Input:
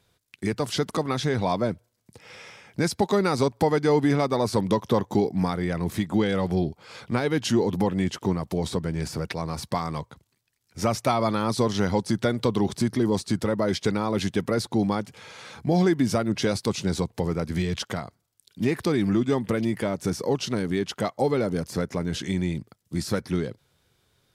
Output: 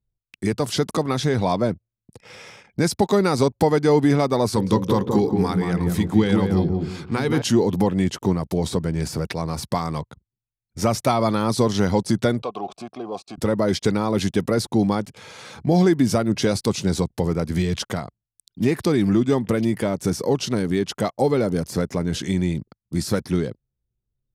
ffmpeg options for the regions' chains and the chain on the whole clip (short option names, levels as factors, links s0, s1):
-filter_complex "[0:a]asettb=1/sr,asplit=3[s0][s1][s2];[s0]atrim=end=4.494[s3];[s1]atrim=start=4.49:end=7.42,asetpts=PTS-STARTPTS,afade=t=in:d=0.004:c=qsin,afade=t=out:st=2.926:d=0.004:c=qsin,equalizer=f=610:w=4.2:g=-9.5,bandreject=f=60:t=h:w=6,bandreject=f=120:t=h:w=6,bandreject=f=180:t=h:w=6,bandreject=f=240:t=h:w=6,bandreject=f=300:t=h:w=6,bandreject=f=360:t=h:w=6,bandreject=f=420:t=h:w=6,bandreject=f=480:t=h:w=6,bandreject=f=540:t=h:w=6,asplit=2[s4][s5];[s5]adelay=175,lowpass=f=1100:p=1,volume=0.708,asplit=2[s6][s7];[s7]adelay=175,lowpass=f=1100:p=1,volume=0.3,asplit=2[s8][s9];[s9]adelay=175,lowpass=f=1100:p=1,volume=0.3,asplit=2[s10][s11];[s11]adelay=175,lowpass=f=1100:p=1,volume=0.3[s12];[s4][s6][s8][s10][s12]amix=inputs=5:normalize=0,atrim=end_sample=129213[s13];[s2]atrim=start=7.416[s14];[s3][s13]acrossfade=d=0.004:c1=hsin:c2=qsin[s15];[s15][s14]acrossfade=d=0.004:c1=qsin:c2=hsin,asettb=1/sr,asplit=3[s16][s17][s18];[s16]atrim=end=12.424[s19];[s17]atrim=start=12.42:end=13.38,asetpts=PTS-STARTPTS,afade=t=in:d=0.004:c=qsin,afade=t=out:st=0.956:d=0.004:c=qsin,highshelf=f=3300:g=6,acontrast=80,asplit=3[s20][s21][s22];[s20]bandpass=f=730:t=q:w=8,volume=1[s23];[s21]bandpass=f=1090:t=q:w=8,volume=0.501[s24];[s22]bandpass=f=2440:t=q:w=8,volume=0.355[s25];[s23][s24][s25]amix=inputs=3:normalize=0[s26];[s18]atrim=start=13.376[s27];[s19][s26]acrossfade=d=0.004:c1=hsin:c2=qsin[s28];[s28][s27]acrossfade=d=0.004:c1=qsin:c2=hsin,highshelf=f=3300:g=10.5,anlmdn=0.0398,tiltshelf=f=1500:g=4.5"